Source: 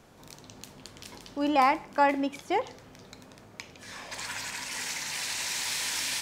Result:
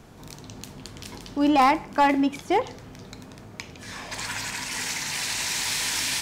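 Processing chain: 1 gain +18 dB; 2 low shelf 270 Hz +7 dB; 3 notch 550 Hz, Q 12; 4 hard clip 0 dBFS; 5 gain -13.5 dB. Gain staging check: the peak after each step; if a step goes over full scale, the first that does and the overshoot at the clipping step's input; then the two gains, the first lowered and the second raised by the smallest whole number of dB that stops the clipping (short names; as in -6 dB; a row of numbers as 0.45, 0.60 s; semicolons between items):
+6.5, +6.5, +7.0, 0.0, -13.5 dBFS; step 1, 7.0 dB; step 1 +11 dB, step 5 -6.5 dB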